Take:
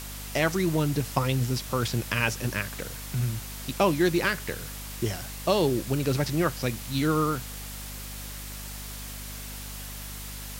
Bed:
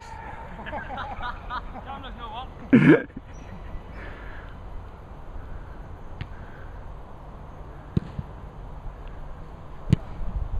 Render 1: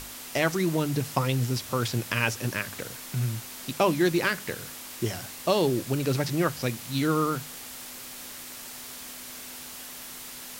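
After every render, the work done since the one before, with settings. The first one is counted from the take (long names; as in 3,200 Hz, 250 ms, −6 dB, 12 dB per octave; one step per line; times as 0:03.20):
mains-hum notches 50/100/150/200 Hz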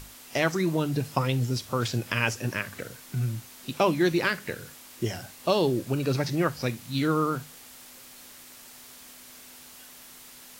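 noise reduction from a noise print 7 dB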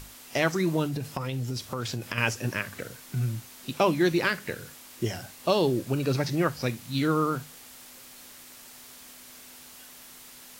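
0:00.86–0:02.18: downward compressor, threshold −27 dBFS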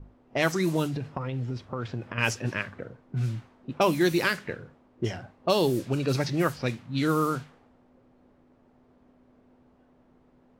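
low-pass that shuts in the quiet parts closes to 430 Hz, open at −20.5 dBFS
high-shelf EQ 6,200 Hz +5.5 dB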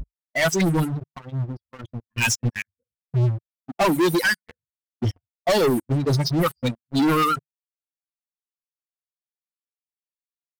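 spectral dynamics exaggerated over time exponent 3
leveller curve on the samples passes 5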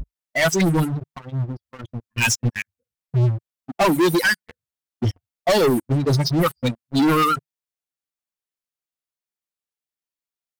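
level +2 dB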